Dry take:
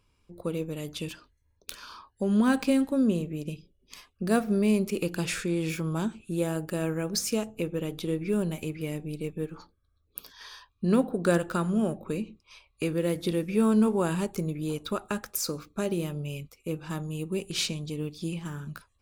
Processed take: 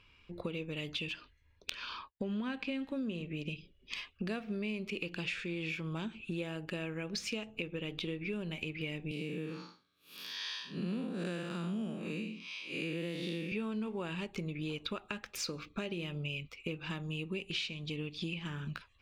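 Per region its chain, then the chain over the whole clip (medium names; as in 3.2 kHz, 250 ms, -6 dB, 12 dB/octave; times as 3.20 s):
1.70–2.82 s: expander -51 dBFS + treble shelf 7.3 kHz -10 dB
9.11–13.52 s: spectral blur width 177 ms + high-pass 190 Hz 24 dB/octave + tone controls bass +10 dB, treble +10 dB
whole clip: FFT filter 780 Hz 0 dB, 2.7 kHz +14 dB, 11 kHz -16 dB; compression 6:1, threshold -37 dBFS; dynamic bell 1.4 kHz, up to -5 dB, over -55 dBFS, Q 1.8; trim +1.5 dB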